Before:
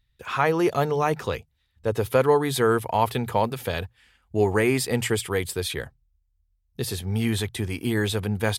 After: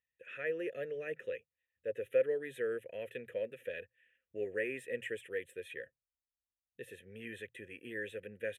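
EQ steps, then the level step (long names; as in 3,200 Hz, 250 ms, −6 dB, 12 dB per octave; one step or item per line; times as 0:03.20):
formant filter e
parametric band 11,000 Hz +9.5 dB 1.1 octaves
phaser with its sweep stopped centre 2,000 Hz, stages 4
−1.5 dB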